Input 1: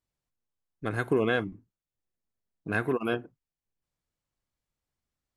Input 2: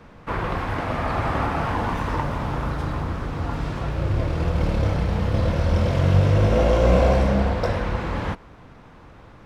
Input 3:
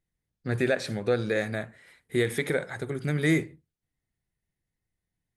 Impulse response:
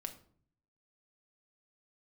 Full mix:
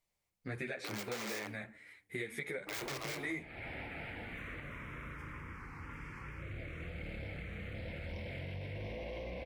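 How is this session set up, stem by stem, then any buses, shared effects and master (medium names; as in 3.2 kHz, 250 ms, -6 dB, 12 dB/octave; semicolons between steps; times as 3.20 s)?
+2.0 dB, 0.00 s, bus A, send -5 dB, self-modulated delay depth 0.99 ms; integer overflow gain 27 dB; Chebyshev high-pass 290 Hz, order 8
-13.5 dB, 2.40 s, bus A, no send, bass shelf 320 Hz -8.5 dB; peak limiter -17.5 dBFS, peak gain reduction 7.5 dB; saturation -19.5 dBFS, distortion -20 dB
-5.0 dB, 0.00 s, no bus, send -17 dB, three-phase chorus
bus A: 0.0 dB, touch-sensitive phaser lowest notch 290 Hz, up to 2.3 kHz, full sweep at -34.5 dBFS; peak limiter -29.5 dBFS, peak gain reduction 9 dB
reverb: on, RT60 0.55 s, pre-delay 5 ms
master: peaking EQ 2.2 kHz +11 dB 0.43 oct; compression 5:1, threshold -38 dBFS, peak gain reduction 14.5 dB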